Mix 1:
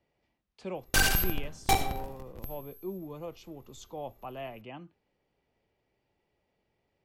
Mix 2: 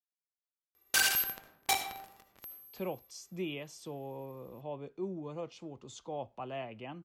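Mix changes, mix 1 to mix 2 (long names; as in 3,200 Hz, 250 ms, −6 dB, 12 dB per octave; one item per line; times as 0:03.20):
speech: entry +2.15 s
background: add high-pass filter 1,400 Hz 6 dB per octave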